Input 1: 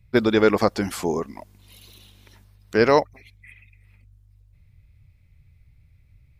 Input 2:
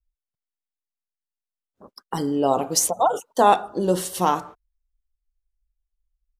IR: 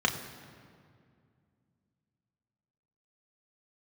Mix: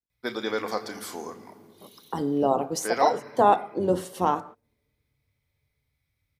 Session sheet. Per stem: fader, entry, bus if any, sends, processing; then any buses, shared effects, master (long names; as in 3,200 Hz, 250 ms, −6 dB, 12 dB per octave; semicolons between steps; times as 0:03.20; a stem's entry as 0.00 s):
−12.0 dB, 0.10 s, send −11.5 dB, spectral tilt +3 dB per octave
−1.5 dB, 0.00 s, no send, sub-octave generator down 1 octave, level −5 dB; high-pass filter 190 Hz 12 dB per octave; high-shelf EQ 2,300 Hz −12 dB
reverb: on, RT60 2.2 s, pre-delay 3 ms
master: no processing